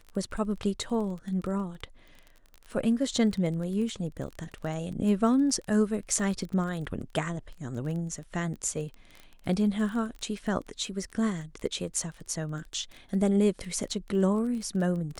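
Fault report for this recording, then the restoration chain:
crackle 21 per s -35 dBFS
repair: de-click

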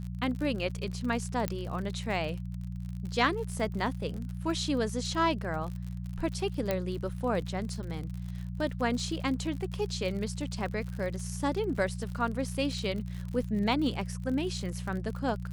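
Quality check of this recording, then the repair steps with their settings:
crackle 59 per s -37 dBFS
hum 60 Hz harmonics 3 -37 dBFS
1.48 s: pop -16 dBFS
6.71 s: pop -15 dBFS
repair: de-click; de-hum 60 Hz, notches 3

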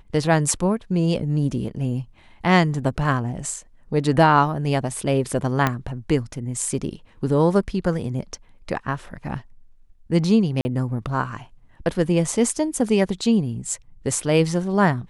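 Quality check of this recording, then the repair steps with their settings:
5.67 s: pop -6 dBFS
10.61–10.65 s: dropout 40 ms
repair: de-click; interpolate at 10.61 s, 40 ms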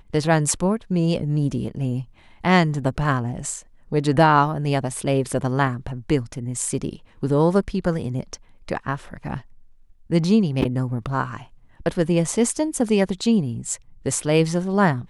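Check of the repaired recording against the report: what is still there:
5.67 s: pop

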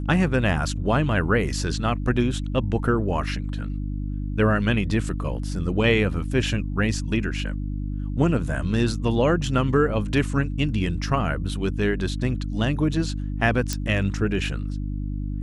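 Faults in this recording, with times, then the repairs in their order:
hum 50 Hz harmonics 6 -28 dBFS
13.73 s: pop -11 dBFS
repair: de-click; de-hum 50 Hz, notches 6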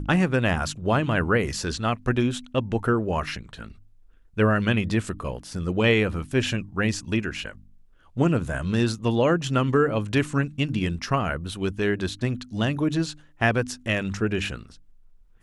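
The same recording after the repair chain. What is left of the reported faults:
nothing left

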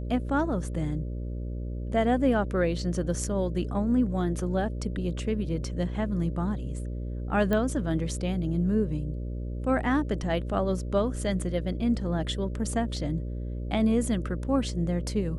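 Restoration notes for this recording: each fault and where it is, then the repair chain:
buzz 60 Hz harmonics 10 -33 dBFS
7.53 s: pop -15 dBFS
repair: de-click; de-hum 60 Hz, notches 10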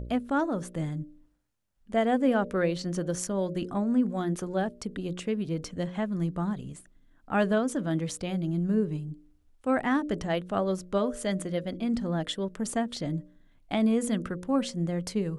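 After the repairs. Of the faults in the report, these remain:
nothing left

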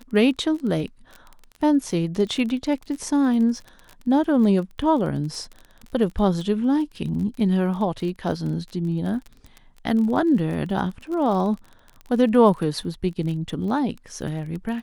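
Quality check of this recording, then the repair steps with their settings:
crackle 29 per s -31 dBFS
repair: de-click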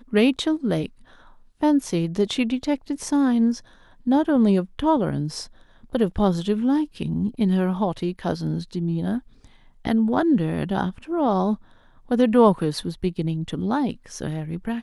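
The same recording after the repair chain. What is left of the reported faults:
nothing left

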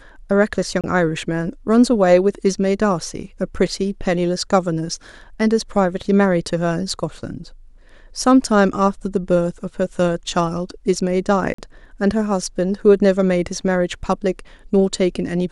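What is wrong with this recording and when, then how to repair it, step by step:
0.81–0.84 s: dropout 27 ms
11.54–11.58 s: dropout 44 ms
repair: interpolate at 0.81 s, 27 ms; interpolate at 11.54 s, 44 ms

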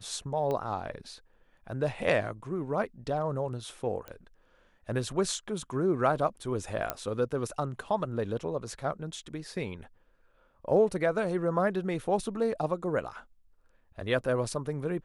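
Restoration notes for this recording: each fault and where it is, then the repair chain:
0.51 s: pop -21 dBFS
4.08 s: pop -26 dBFS
6.90 s: pop -13 dBFS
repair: de-click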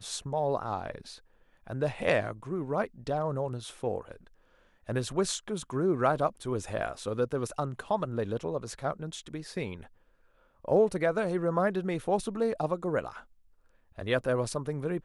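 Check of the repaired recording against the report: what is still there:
6.90 s: pop

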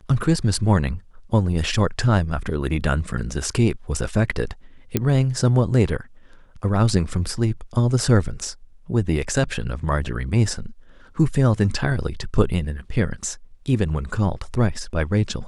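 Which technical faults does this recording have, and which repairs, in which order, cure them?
4.97 s: pop -5 dBFS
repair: de-click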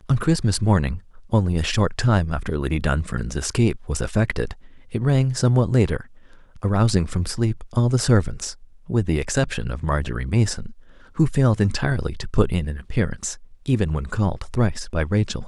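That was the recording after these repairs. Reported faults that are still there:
nothing left

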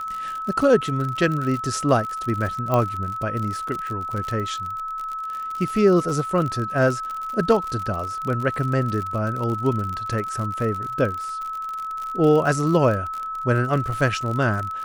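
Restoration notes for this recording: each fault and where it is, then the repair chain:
crackle 56 per s -27 dBFS
whine 1.3 kHz -27 dBFS
2.74 s: pop -10 dBFS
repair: de-click; band-stop 1.3 kHz, Q 30

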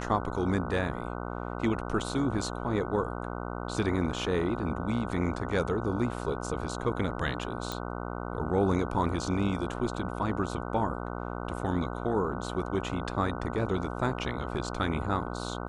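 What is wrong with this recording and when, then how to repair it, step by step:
buzz 60 Hz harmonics 25 -36 dBFS
7.72 s: pop -18 dBFS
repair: de-click; de-hum 60 Hz, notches 25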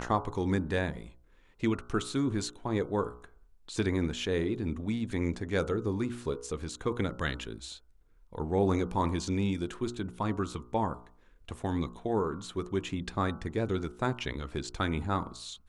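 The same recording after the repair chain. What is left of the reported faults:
nothing left

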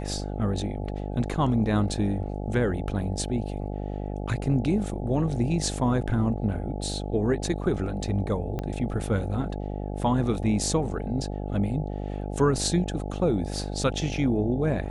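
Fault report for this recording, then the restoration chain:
buzz 50 Hz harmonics 17 -32 dBFS
8.59 s: pop -18 dBFS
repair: de-click; de-hum 50 Hz, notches 17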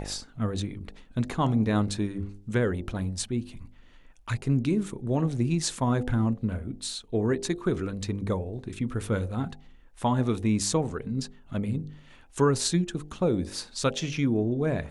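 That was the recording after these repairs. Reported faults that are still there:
8.59 s: pop

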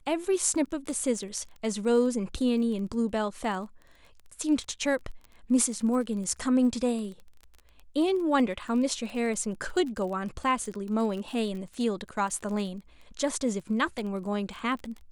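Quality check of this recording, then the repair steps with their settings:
crackle 23 per s -36 dBFS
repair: de-click

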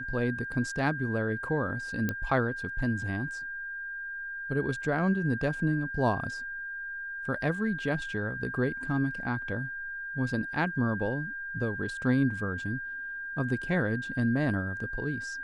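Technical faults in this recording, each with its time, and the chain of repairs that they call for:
whine 1.6 kHz -35 dBFS
2.09 s: pop -16 dBFS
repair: de-click; band-stop 1.6 kHz, Q 30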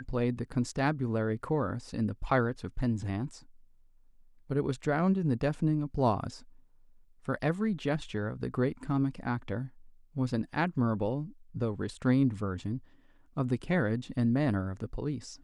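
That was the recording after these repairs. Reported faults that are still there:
nothing left

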